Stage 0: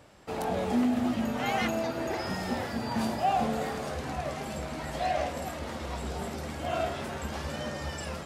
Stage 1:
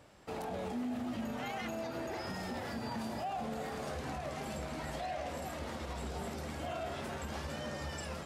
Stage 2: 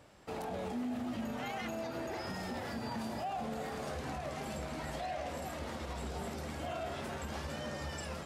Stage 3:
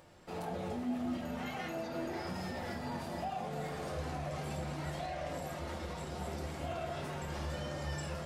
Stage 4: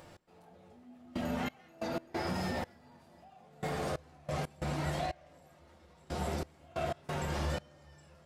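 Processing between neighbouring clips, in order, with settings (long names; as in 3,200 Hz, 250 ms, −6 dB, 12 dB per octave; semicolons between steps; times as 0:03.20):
brickwall limiter −27 dBFS, peak gain reduction 10.5 dB; level −4 dB
no processing that can be heard
upward compression, threshold −56 dBFS; flanger 0.56 Hz, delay 6.1 ms, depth 8.7 ms, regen −68%; convolution reverb RT60 0.60 s, pre-delay 6 ms, DRR 1 dB; level +1 dB
gate pattern "x......xx..x.xx" 91 BPM −24 dB; level +5 dB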